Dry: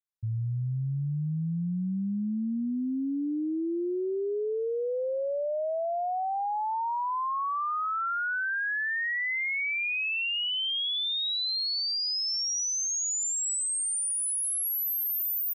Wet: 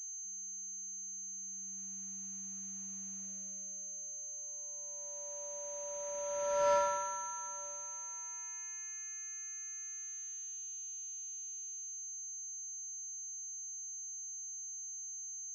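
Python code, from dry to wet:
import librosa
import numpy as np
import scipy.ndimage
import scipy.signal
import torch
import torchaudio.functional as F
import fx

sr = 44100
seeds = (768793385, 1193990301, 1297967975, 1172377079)

p1 = fx.filter_sweep_bandpass(x, sr, from_hz=2100.0, to_hz=510.0, start_s=4.3, end_s=8.24, q=7.1)
p2 = fx.vocoder(p1, sr, bands=8, carrier='square', carrier_hz=193.0)
p3 = fx.mod_noise(p2, sr, seeds[0], snr_db=16)
p4 = fx.low_shelf(p3, sr, hz=410.0, db=-5.5)
p5 = p4 + fx.echo_single(p4, sr, ms=956, db=-22.5, dry=0)
p6 = fx.pwm(p5, sr, carrier_hz=6300.0)
y = F.gain(torch.from_numpy(p6), 4.0).numpy()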